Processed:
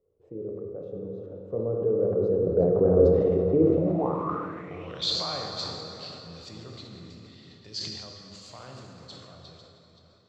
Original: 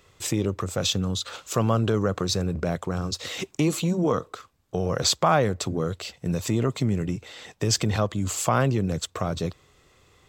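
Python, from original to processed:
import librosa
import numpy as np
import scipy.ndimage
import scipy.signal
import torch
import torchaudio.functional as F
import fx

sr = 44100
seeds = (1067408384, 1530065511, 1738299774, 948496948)

y = fx.reverse_delay(x, sr, ms=357, wet_db=-10)
y = fx.doppler_pass(y, sr, speed_mps=8, closest_m=1.5, pass_at_s=3.07)
y = fx.high_shelf(y, sr, hz=5000.0, db=6.0)
y = fx.hum_notches(y, sr, base_hz=50, count=8)
y = fx.rev_plate(y, sr, seeds[0], rt60_s=3.6, hf_ratio=0.65, predelay_ms=0, drr_db=0.5)
y = fx.filter_sweep_lowpass(y, sr, from_hz=460.0, to_hz=4400.0, start_s=3.7, end_s=5.18, q=5.6)
y = fx.sustainer(y, sr, db_per_s=36.0)
y = y * 10.0 ** (3.5 / 20.0)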